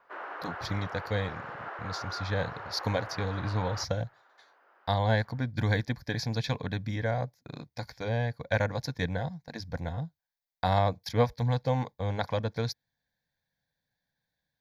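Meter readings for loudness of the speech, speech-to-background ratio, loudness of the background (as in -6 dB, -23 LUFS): -32.0 LUFS, 8.5 dB, -40.5 LUFS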